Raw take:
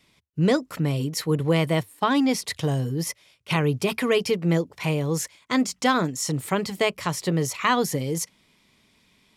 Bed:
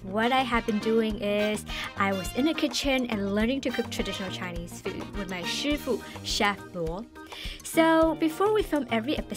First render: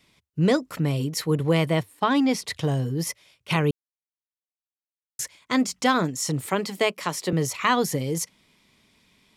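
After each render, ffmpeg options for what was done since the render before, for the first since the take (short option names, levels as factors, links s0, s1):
-filter_complex "[0:a]asettb=1/sr,asplit=3[s0][s1][s2];[s0]atrim=end=1.654[s3];[s1]atrim=start=1.65:end=2.96,asetpts=PTS-STARTPTS,afade=t=in:d=0.004:c=qsin,afade=t=out:st=1.306:d=0.004:c=qsin,highshelf=f=7000:g=-5.5[s4];[s2]atrim=start=2.956[s5];[s3][s4]acrossfade=d=0.004:c1=hsin:c2=qsin[s6];[s6][s5]acrossfade=d=0.004:c1=qsin:c2=hsin,asettb=1/sr,asplit=3[s7][s8][s9];[s7]atrim=end=6.464[s10];[s8]atrim=start=6.46:end=7.33,asetpts=PTS-STARTPTS,afade=t=in:d=0.004:c=qsin,afade=t=out:st=0.866:d=0.004:c=qsin,highpass=f=190:w=0.5412,highpass=f=190:w=1.3066[s11];[s9]atrim=start=7.326[s12];[s10][s11]acrossfade=d=0.004:c1=hsin:c2=qsin[s13];[s13][s12]acrossfade=d=0.004:c1=qsin:c2=hsin,asplit=3[s14][s15][s16];[s14]atrim=end=3.71,asetpts=PTS-STARTPTS,afade=t=out:st=3.706:d=0.004:c=hsin[s17];[s15]atrim=start=3.71:end=5.19,asetpts=PTS-STARTPTS,volume=0[s18];[s16]atrim=start=5.19,asetpts=PTS-STARTPTS,afade=t=in:d=0.004:c=hsin[s19];[s17][s18][s19]concat=n=3:v=0:a=1"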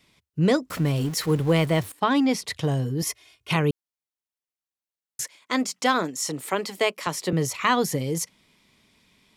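-filter_complex "[0:a]asettb=1/sr,asplit=3[s0][s1][s2];[s0]atrim=end=0.704[s3];[s1]atrim=start=0.7:end=1.92,asetpts=PTS-STARTPTS,afade=t=in:d=0.004:c=qsin,afade=t=out:st=1.216:d=0.004:c=qsin,aeval=exprs='val(0)+0.5*0.0188*sgn(val(0))':c=same[s4];[s2]atrim=start=1.916[s5];[s3][s4]acrossfade=d=0.004:c1=hsin:c2=qsin[s6];[s6][s5]acrossfade=d=0.004:c1=qsin:c2=hsin,asettb=1/sr,asplit=3[s7][s8][s9];[s7]atrim=end=3.024[s10];[s8]atrim=start=3.02:end=3.51,asetpts=PTS-STARTPTS,afade=t=in:d=0.004:c=qsin,afade=t=out:st=0.486:d=0.004:c=qsin,aecho=1:1:2.8:0.85,atrim=end_sample=21609[s11];[s9]atrim=start=3.506[s12];[s10][s11]acrossfade=d=0.004:c1=hsin:c2=qsin[s13];[s13][s12]acrossfade=d=0.004:c1=qsin:c2=hsin,asettb=1/sr,asplit=3[s14][s15][s16];[s14]atrim=end=5.244[s17];[s15]atrim=start=5.24:end=7.07,asetpts=PTS-STARTPTS,afade=t=in:d=0.004:c=qsin,afade=t=out:st=1.826:d=0.004:c=qsin,highpass=270[s18];[s16]atrim=start=7.066[s19];[s17][s18]acrossfade=d=0.004:c1=hsin:c2=qsin[s20];[s20][s19]acrossfade=d=0.004:c1=qsin:c2=hsin"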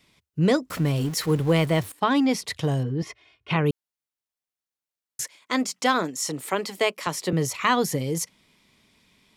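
-filter_complex "[0:a]asettb=1/sr,asplit=3[s0][s1][s2];[s0]atrim=end=2.834[s3];[s1]atrim=start=2.83:end=3.66,asetpts=PTS-STARTPTS,afade=t=in:d=0.004:c=qsin,afade=t=out:st=0.826:d=0.004:c=qsin,lowpass=2900[s4];[s2]atrim=start=3.656[s5];[s3][s4]acrossfade=d=0.004:c1=hsin:c2=qsin[s6];[s6][s5]acrossfade=d=0.004:c1=qsin:c2=hsin"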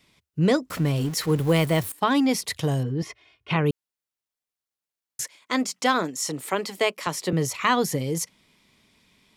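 -filter_complex "[0:a]asettb=1/sr,asplit=3[s0][s1][s2];[s0]atrim=end=1.384[s3];[s1]atrim=start=1.38:end=3.07,asetpts=PTS-STARTPTS,afade=t=in:d=0.004:c=qsin,afade=t=out:st=1.686:d=0.004:c=qsin,highshelf=f=9300:g=11[s4];[s2]atrim=start=3.066[s5];[s3][s4]acrossfade=d=0.004:c1=hsin:c2=qsin[s6];[s6][s5]acrossfade=d=0.004:c1=qsin:c2=hsin"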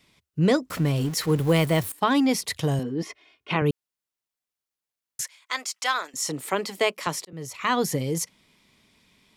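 -filter_complex "[0:a]asettb=1/sr,asplit=3[s0][s1][s2];[s0]atrim=end=2.794[s3];[s1]atrim=start=2.79:end=3.62,asetpts=PTS-STARTPTS,afade=t=in:d=0.004:c=qsin,afade=t=out:st=0.826:d=0.004:c=qsin,lowshelf=f=160:t=q:w=1.5:g=-10.5[s4];[s2]atrim=start=3.616[s5];[s3][s4]acrossfade=d=0.004:c1=hsin:c2=qsin[s6];[s6][s5]acrossfade=d=0.004:c1=qsin:c2=hsin,asettb=1/sr,asplit=3[s7][s8][s9];[s7]atrim=end=5.214[s10];[s8]atrim=start=5.21:end=6.14,asetpts=PTS-STARTPTS,afade=t=in:d=0.004:c=qsin,afade=t=out:st=0.926:d=0.004:c=qsin,highpass=1000[s11];[s9]atrim=start=6.136[s12];[s10][s11]acrossfade=d=0.004:c1=hsin:c2=qsin[s13];[s13][s12]acrossfade=d=0.004:c1=qsin:c2=hsin,asplit=2[s14][s15];[s14]atrim=end=7.25,asetpts=PTS-STARTPTS,afade=t=out:st=7.246:d=0.004:c=hsin[s16];[s15]atrim=start=7.25,asetpts=PTS-STARTPTS,afade=t=in:d=0.62[s17];[s16][s17]concat=n=2:v=0:a=1"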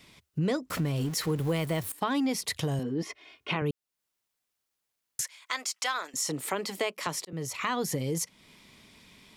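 -filter_complex "[0:a]asplit=2[s0][s1];[s1]alimiter=limit=0.126:level=0:latency=1:release=120,volume=1[s2];[s0][s2]amix=inputs=2:normalize=0,acompressor=threshold=0.0178:ratio=2"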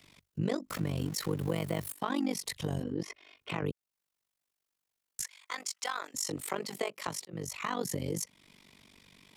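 -filter_complex "[0:a]tremolo=f=48:d=0.947,acrossover=split=130|1500|4900[s0][s1][s2][s3];[s2]asoftclip=type=tanh:threshold=0.0168[s4];[s0][s1][s4][s3]amix=inputs=4:normalize=0"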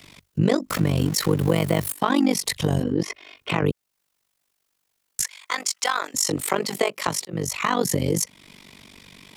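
-af "volume=3.98"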